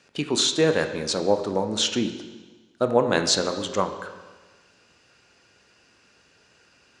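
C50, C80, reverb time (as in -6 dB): 9.5 dB, 10.5 dB, 1.3 s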